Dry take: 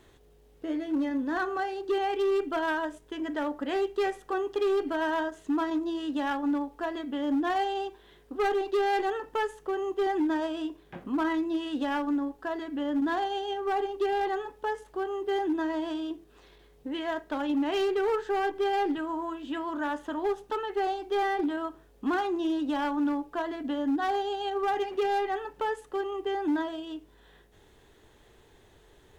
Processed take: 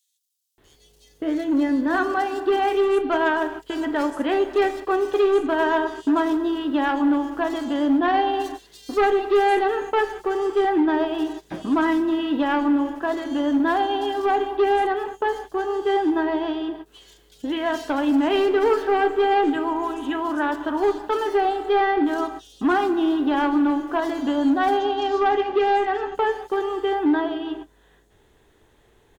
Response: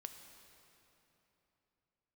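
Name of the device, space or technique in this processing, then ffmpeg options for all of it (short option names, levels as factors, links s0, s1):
keyed gated reverb: -filter_complex "[0:a]asplit=3[s0][s1][s2];[1:a]atrim=start_sample=2205[s3];[s1][s3]afir=irnorm=-1:irlink=0[s4];[s2]apad=whole_len=1286913[s5];[s4][s5]sidechaingate=range=0.0224:threshold=0.00562:ratio=16:detection=peak,volume=2.82[s6];[s0][s6]amix=inputs=2:normalize=0,asettb=1/sr,asplit=3[s7][s8][s9];[s7]atrim=end=24.794[s10];[s8]atrim=start=24.79:end=26.15,asetpts=PTS-STARTPTS,afade=t=in:d=0.004:c=qsin,afade=t=out:st=1.356:d=0.004:c=qsin,lowpass=f=6600:w=0.5412,lowpass=f=6600:w=1.3066[s11];[s9]atrim=start=26.146[s12];[s10][s11]acrossfade=d=0.004:c1=hsin:c2=qsin[s13];[s13][s12]acrossfade=d=0.004:c1=qsin:c2=hsin,acrossover=split=4400[s14][s15];[s14]adelay=580[s16];[s16][s15]amix=inputs=2:normalize=0"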